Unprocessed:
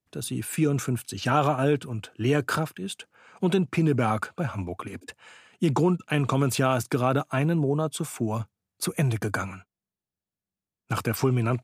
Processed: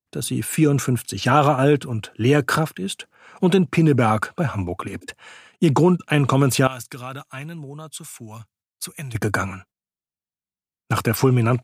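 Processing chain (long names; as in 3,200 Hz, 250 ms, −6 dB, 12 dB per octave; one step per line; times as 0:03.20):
noise gate −55 dBFS, range −15 dB
0:06.67–0:09.15: guitar amp tone stack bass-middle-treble 5-5-5
level +6.5 dB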